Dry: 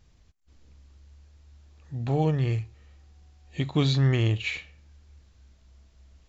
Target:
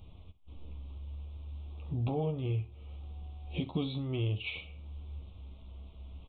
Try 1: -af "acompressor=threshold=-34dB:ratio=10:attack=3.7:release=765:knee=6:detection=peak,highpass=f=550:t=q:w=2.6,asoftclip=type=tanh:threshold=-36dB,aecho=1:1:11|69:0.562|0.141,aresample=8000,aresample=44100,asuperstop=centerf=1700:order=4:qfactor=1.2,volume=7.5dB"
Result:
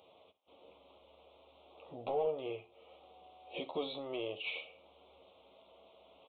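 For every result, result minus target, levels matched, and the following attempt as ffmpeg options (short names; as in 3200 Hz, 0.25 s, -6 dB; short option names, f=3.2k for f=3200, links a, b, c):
soft clip: distortion +12 dB; 500 Hz band +4.5 dB
-af "acompressor=threshold=-34dB:ratio=10:attack=3.7:release=765:knee=6:detection=peak,highpass=f=550:t=q:w=2.6,asoftclip=type=tanh:threshold=-28.5dB,aecho=1:1:11|69:0.562|0.141,aresample=8000,aresample=44100,asuperstop=centerf=1700:order=4:qfactor=1.2,volume=7.5dB"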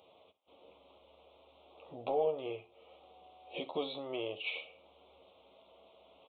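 500 Hz band +4.5 dB
-af "acompressor=threshold=-34dB:ratio=10:attack=3.7:release=765:knee=6:detection=peak,asoftclip=type=tanh:threshold=-28.5dB,aecho=1:1:11|69:0.562|0.141,aresample=8000,aresample=44100,asuperstop=centerf=1700:order=4:qfactor=1.2,volume=7.5dB"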